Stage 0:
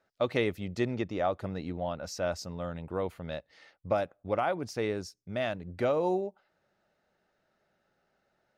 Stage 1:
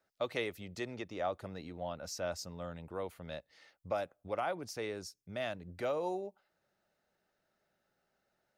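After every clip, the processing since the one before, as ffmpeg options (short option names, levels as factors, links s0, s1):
-filter_complex "[0:a]highshelf=f=5800:g=9,acrossover=split=390|820[s0][s1][s2];[s0]alimiter=level_in=3.35:limit=0.0631:level=0:latency=1:release=216,volume=0.299[s3];[s3][s1][s2]amix=inputs=3:normalize=0,volume=0.501"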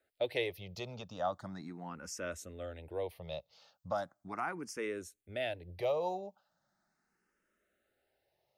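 -filter_complex "[0:a]asplit=2[s0][s1];[s1]afreqshift=0.38[s2];[s0][s2]amix=inputs=2:normalize=1,volume=1.41"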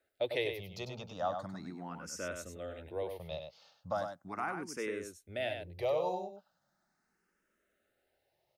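-af "aecho=1:1:99:0.473"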